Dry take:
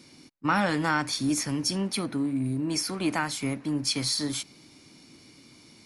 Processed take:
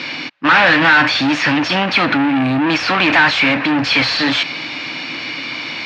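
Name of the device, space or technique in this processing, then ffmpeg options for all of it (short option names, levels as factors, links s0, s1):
overdrive pedal into a guitar cabinet: -filter_complex "[0:a]asplit=2[s0][s1];[s1]highpass=f=720:p=1,volume=44.7,asoftclip=type=tanh:threshold=0.251[s2];[s0][s2]amix=inputs=2:normalize=0,lowpass=f=5800:p=1,volume=0.501,highpass=94,equalizer=f=210:t=q:w=4:g=-8,equalizer=f=390:t=q:w=4:g=-10,equalizer=f=1700:t=q:w=4:g=5,equalizer=f=2600:t=q:w=4:g=6,lowpass=f=4000:w=0.5412,lowpass=f=4000:w=1.3066,volume=2.11"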